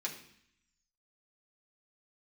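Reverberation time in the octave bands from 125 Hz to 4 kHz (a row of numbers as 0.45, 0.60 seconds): 0.95, 0.90, 0.60, 0.70, 0.85, 0.80 seconds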